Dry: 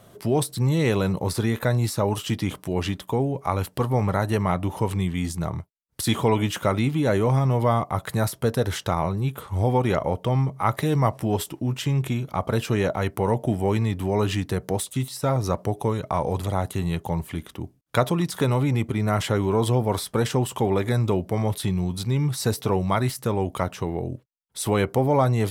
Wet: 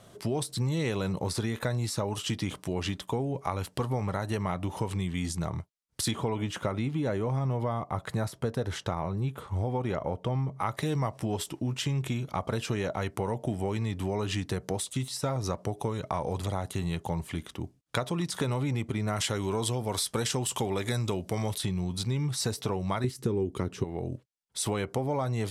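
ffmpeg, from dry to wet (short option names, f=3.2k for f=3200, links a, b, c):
-filter_complex "[0:a]asettb=1/sr,asplit=3[a][b][c];[a]atrim=end=6.114[d];[b]atrim=start=6.11:end=10.6,asetpts=PTS-STARTPTS,afade=t=in:d=0.004:c=qsin,afade=t=out:st=4.486:d=0.004:c=qsin,highshelf=f=2.3k:g=-8[e];[c]atrim=start=10.596[f];[d][e]acrossfade=d=0.004:c1=hsin:c2=qsin[g];[g][f]acrossfade=d=0.004:c1=qsin:c2=hsin,asettb=1/sr,asplit=3[h][i][j];[h]atrim=end=19.164[k];[i]atrim=start=19.16:end=21.58,asetpts=PTS-STARTPTS,afade=t=in:d=0.004:c=qsin,afade=t=out:st=2.416:d=0.004:c=qsin,highshelf=f=2.8k:g=9.5[l];[j]atrim=start=21.576[m];[k][l]acrossfade=d=0.004:c1=hsin:c2=qsin[n];[n][m]acrossfade=d=0.004:c1=qsin:c2=hsin,asettb=1/sr,asplit=3[o][p][q];[o]atrim=end=23.044[r];[p]atrim=start=23.04:end=23.84,asetpts=PTS-STARTPTS,afade=t=in:d=0.004:c=qsin,afade=t=out:st=0.796:d=0.004:c=qsin,lowshelf=f=500:t=q:w=3:g=8[s];[q]atrim=start=23.836[t];[r][s]acrossfade=d=0.004:c1=hsin:c2=qsin[u];[u][t]acrossfade=d=0.004:c1=qsin:c2=hsin,lowpass=8.3k,highshelf=f=3.7k:g=6.5,acompressor=threshold=-23dB:ratio=6,volume=-3dB"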